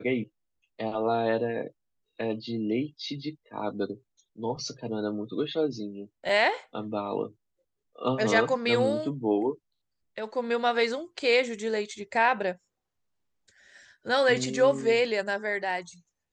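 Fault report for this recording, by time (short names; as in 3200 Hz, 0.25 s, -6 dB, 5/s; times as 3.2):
6.29 gap 2.1 ms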